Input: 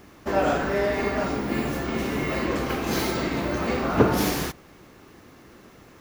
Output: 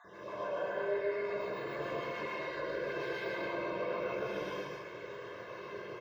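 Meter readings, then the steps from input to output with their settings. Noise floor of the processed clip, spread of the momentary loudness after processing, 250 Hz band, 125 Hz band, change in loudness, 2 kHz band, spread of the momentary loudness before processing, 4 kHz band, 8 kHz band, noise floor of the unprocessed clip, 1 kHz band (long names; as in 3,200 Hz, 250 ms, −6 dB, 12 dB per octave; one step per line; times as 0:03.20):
−48 dBFS, 10 LU, −19.0 dB, −21.0 dB, −13.0 dB, −9.5 dB, 6 LU, −14.5 dB, below −25 dB, −51 dBFS, −12.5 dB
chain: time-frequency cells dropped at random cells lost 38%
high-pass filter 240 Hz 12 dB per octave
high-shelf EQ 11,000 Hz +4.5 dB
comb filter 1.9 ms, depth 95%
downward compressor, threshold −36 dBFS, peak gain reduction 19 dB
brickwall limiter −35 dBFS, peak gain reduction 10 dB
high-frequency loss of the air 240 metres
loudspeakers that aren't time-aligned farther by 53 metres −2 dB, 90 metres −7 dB
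reverb whose tail is shaped and stops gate 170 ms rising, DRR −6 dB
level −2.5 dB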